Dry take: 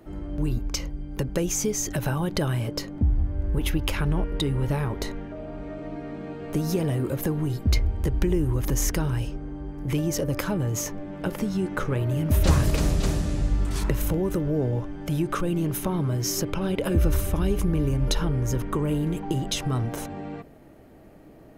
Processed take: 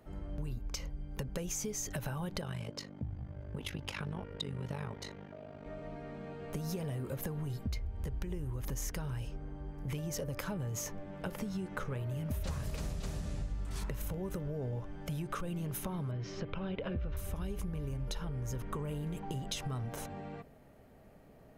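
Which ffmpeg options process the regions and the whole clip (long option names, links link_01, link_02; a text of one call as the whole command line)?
ffmpeg -i in.wav -filter_complex "[0:a]asettb=1/sr,asplit=3[link_01][link_02][link_03];[link_01]atrim=end=2.414[link_04];[link_02]atrim=start=2.41:end=5.66,asetpts=PTS-STARTPTS,afade=type=in:duration=0.004:curve=qsin,afade=type=out:start_time=3.246:duration=0.004:curve=qsin,aemphasis=mode=production:type=50kf,tremolo=f=50:d=0.857,highpass=100,lowpass=5000[link_05];[link_03]atrim=start=5.656[link_06];[link_04][link_05]acrossfade=duration=0.004:curve1=hsin:curve2=qsin[link_07];[link_07][link_06]acrossfade=duration=0.004:curve1=qsin:curve2=hsin,asettb=1/sr,asplit=3[link_08][link_09][link_10];[link_08]atrim=end=16.114[link_11];[link_09]atrim=start=16.11:end=17.17,asetpts=PTS-STARTPTS,afade=type=in:duration=0.004:curve=qsin,afade=type=out:start_time=1.056:duration=0.004:curve=qsin,lowpass=frequency=3700:width=0.5412,lowpass=frequency=3700:width=1.3066,bandreject=frequency=860:width=18[link_12];[link_10]atrim=start=17.166[link_13];[link_11][link_12]acrossfade=duration=0.004:curve1=hsin:curve2=qsin[link_14];[link_14][link_13]acrossfade=duration=0.004:curve1=qsin:curve2=hsin,equalizer=frequency=320:width=5.8:gain=-14,acompressor=threshold=-27dB:ratio=6,volume=-7dB" out.wav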